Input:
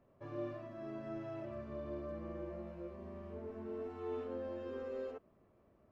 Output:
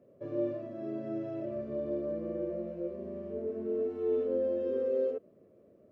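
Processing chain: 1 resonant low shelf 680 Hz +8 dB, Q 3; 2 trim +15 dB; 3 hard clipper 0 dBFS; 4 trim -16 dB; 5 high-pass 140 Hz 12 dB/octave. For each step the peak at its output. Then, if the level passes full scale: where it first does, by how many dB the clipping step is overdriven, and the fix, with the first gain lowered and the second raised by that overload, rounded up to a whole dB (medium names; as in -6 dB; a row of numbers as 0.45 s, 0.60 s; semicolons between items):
-20.0 dBFS, -5.0 dBFS, -5.0 dBFS, -21.0 dBFS, -21.5 dBFS; nothing clips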